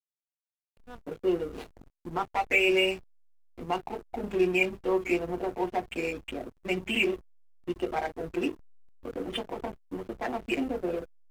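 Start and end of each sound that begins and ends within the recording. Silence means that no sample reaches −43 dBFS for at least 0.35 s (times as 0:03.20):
0:00.89–0:02.99
0:03.58–0:07.19
0:07.68–0:08.54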